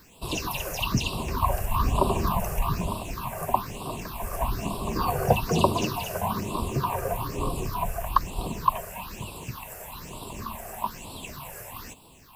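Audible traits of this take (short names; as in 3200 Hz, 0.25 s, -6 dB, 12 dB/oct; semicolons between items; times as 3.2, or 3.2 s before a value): a quantiser's noise floor 10-bit, dither none; phasing stages 6, 1.1 Hz, lowest notch 260–1800 Hz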